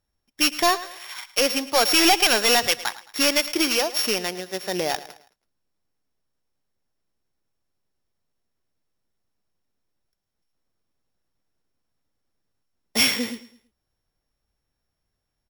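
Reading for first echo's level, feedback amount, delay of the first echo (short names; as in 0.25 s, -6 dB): -16.5 dB, 37%, 0.109 s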